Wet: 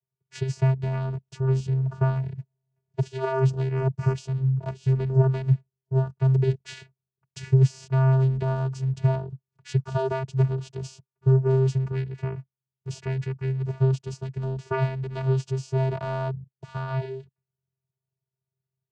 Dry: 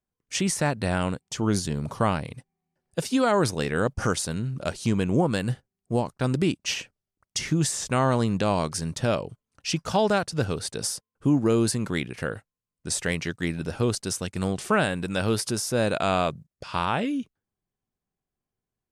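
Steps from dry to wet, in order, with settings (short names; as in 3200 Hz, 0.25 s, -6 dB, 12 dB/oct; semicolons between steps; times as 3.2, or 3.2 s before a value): added harmonics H 3 -21 dB, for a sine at -11 dBFS; vocoder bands 8, square 132 Hz; gain +4 dB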